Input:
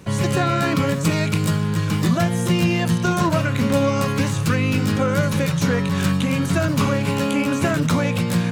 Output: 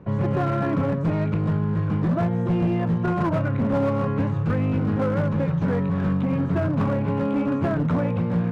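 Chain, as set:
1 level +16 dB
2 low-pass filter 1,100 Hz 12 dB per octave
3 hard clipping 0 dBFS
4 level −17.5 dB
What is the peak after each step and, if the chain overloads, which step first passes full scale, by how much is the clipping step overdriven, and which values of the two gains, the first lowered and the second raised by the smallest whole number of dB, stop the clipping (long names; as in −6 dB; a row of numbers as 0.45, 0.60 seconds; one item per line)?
+9.5, +8.5, 0.0, −17.5 dBFS
step 1, 8.5 dB
step 1 +7 dB, step 4 −8.5 dB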